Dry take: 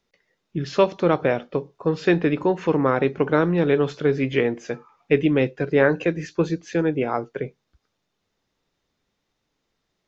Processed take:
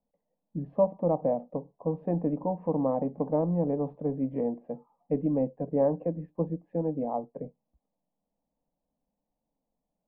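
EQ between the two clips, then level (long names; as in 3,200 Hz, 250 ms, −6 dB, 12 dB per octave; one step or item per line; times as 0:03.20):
low-pass filter 1,000 Hz 24 dB per octave
phaser with its sweep stopped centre 380 Hz, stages 6
−3.5 dB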